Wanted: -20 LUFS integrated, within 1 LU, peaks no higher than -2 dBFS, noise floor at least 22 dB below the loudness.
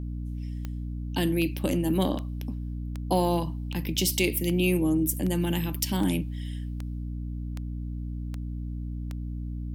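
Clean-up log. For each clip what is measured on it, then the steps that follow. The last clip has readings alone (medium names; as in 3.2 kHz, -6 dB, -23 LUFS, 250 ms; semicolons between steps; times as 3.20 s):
clicks found 12; hum 60 Hz; highest harmonic 300 Hz; hum level -31 dBFS; loudness -29.0 LUFS; peak level -11.0 dBFS; loudness target -20.0 LUFS
-> de-click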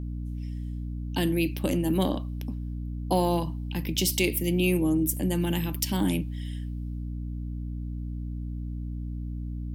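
clicks found 0; hum 60 Hz; highest harmonic 300 Hz; hum level -31 dBFS
-> hum notches 60/120/180/240/300 Hz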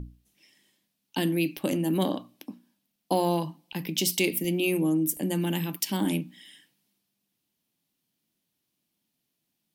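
hum not found; loudness -27.5 LUFS; peak level -11.0 dBFS; loudness target -20.0 LUFS
-> trim +7.5 dB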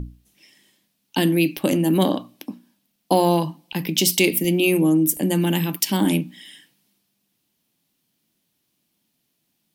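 loudness -20.0 LUFS; peak level -3.5 dBFS; noise floor -73 dBFS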